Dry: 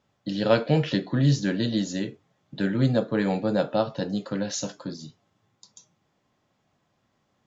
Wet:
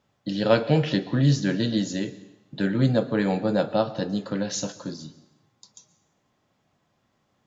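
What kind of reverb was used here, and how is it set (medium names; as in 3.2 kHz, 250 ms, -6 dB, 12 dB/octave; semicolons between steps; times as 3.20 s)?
plate-style reverb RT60 0.92 s, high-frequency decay 0.95×, pre-delay 105 ms, DRR 17 dB; trim +1 dB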